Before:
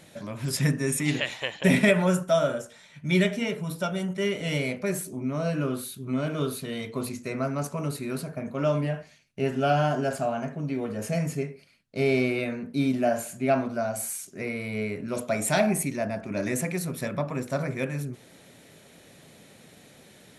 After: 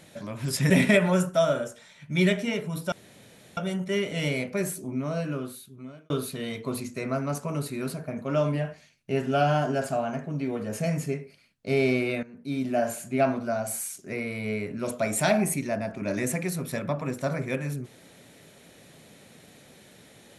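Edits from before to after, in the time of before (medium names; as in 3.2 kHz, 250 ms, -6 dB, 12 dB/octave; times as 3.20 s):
0.70–1.64 s: delete
3.86 s: insert room tone 0.65 s
5.22–6.39 s: fade out
12.52–13.18 s: fade in, from -17 dB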